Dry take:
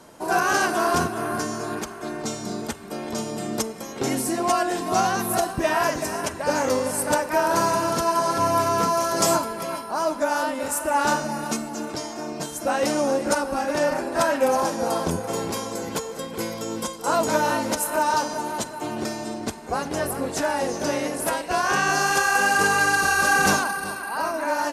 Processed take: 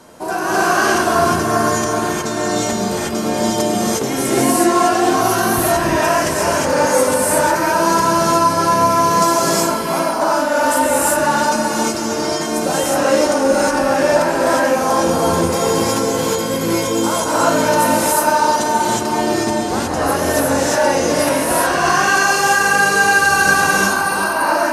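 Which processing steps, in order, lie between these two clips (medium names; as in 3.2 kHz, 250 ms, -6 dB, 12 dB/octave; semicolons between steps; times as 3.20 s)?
compression, threshold -23 dBFS, peak gain reduction 8 dB; gated-style reverb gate 390 ms rising, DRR -7.5 dB; trim +4 dB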